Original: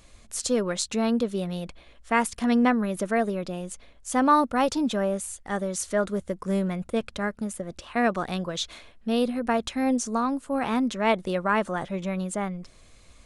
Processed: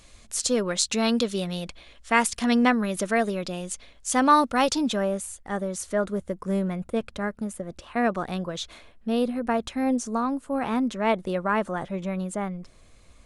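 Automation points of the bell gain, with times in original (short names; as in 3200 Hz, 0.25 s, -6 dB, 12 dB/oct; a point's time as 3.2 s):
bell 5100 Hz 2.8 oct
0.76 s +4 dB
1.18 s +14 dB
1.48 s +7.5 dB
4.69 s +7.5 dB
5.44 s -4 dB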